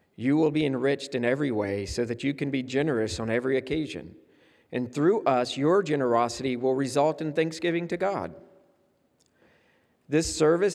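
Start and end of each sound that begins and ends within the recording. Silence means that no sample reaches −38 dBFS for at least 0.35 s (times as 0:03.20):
0:04.73–0:08.37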